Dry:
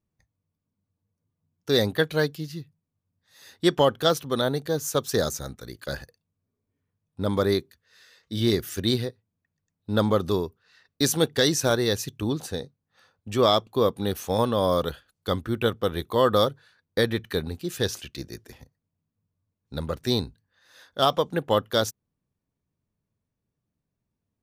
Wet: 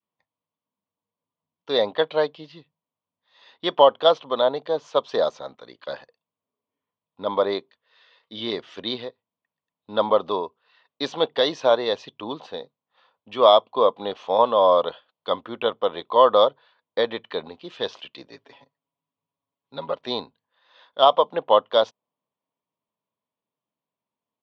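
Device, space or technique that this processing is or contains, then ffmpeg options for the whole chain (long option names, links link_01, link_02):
phone earpiece: -filter_complex "[0:a]lowpass=7900,highpass=340,equalizer=frequency=360:width_type=q:width=4:gain=-5,equalizer=frequency=620:width_type=q:width=4:gain=3,equalizer=frequency=1000:width_type=q:width=4:gain=10,equalizer=frequency=1600:width_type=q:width=4:gain=-6,equalizer=frequency=3200:width_type=q:width=4:gain=6,lowpass=frequency=3900:width=0.5412,lowpass=frequency=3900:width=1.3066,asplit=3[link_01][link_02][link_03];[link_01]afade=type=out:start_time=18.27:duration=0.02[link_04];[link_02]aecho=1:1:7.2:0.73,afade=type=in:start_time=18.27:duration=0.02,afade=type=out:start_time=19.94:duration=0.02[link_05];[link_03]afade=type=in:start_time=19.94:duration=0.02[link_06];[link_04][link_05][link_06]amix=inputs=3:normalize=0,adynamicequalizer=threshold=0.0224:dfrequency=630:dqfactor=1.2:tfrequency=630:tqfactor=1.2:attack=5:release=100:ratio=0.375:range=3.5:mode=boostabove:tftype=bell,volume=-1dB"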